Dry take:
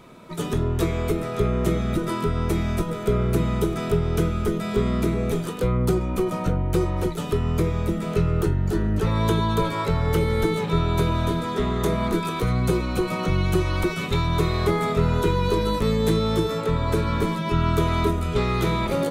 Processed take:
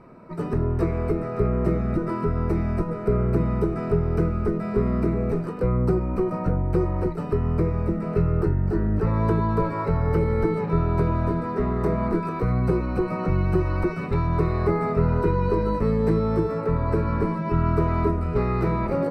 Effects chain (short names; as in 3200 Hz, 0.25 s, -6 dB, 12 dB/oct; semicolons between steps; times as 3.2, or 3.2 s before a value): running mean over 13 samples